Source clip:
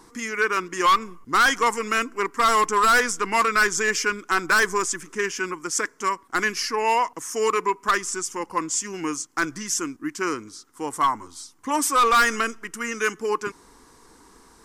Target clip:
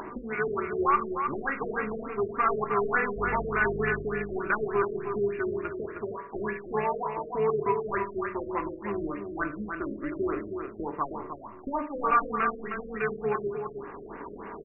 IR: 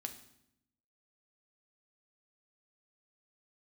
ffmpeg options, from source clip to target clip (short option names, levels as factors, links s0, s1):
-filter_complex "[0:a]acrossover=split=160|6700[s0][s1][s2];[s1]acompressor=mode=upward:threshold=0.0501:ratio=2.5[s3];[s0][s3][s2]amix=inputs=3:normalize=0,asettb=1/sr,asplit=3[s4][s5][s6];[s4]atrim=end=3.164[s7];[s5]atrim=start=3.16:end=4.04,asetpts=PTS-STARTPTS,afade=t=in:d=0.004:c=qsin,afade=t=out:st=0.876:d=0.004:c=qsin,aeval=exprs='val(0)+0.0282*(sin(2*PI*50*n/s)+sin(2*PI*2*50*n/s)/2+sin(2*PI*3*50*n/s)/3+sin(2*PI*4*50*n/s)/4+sin(2*PI*5*50*n/s)/5)':c=same[s8];[s6]atrim=start=4.036[s9];[s7][s8]acrossfade=d=0.004:c1=hsin:c2=qsin[s10];[s10][s9]acrossfade=d=0.004:c1=qsin:c2=hsin,tremolo=f=280:d=0.571[s11];[1:a]atrim=start_sample=2205,asetrate=70560,aresample=44100[s12];[s11][s12]afir=irnorm=-1:irlink=0,asplit=2[s13][s14];[s14]acompressor=threshold=0.01:ratio=6,volume=1[s15];[s13][s15]amix=inputs=2:normalize=0,aecho=1:1:312:0.473,afftfilt=real='re*lt(b*sr/1024,610*pow(2900/610,0.5+0.5*sin(2*PI*3.4*pts/sr)))':imag='im*lt(b*sr/1024,610*pow(2900/610,0.5+0.5*sin(2*PI*3.4*pts/sr)))':win_size=1024:overlap=0.75,volume=1.26"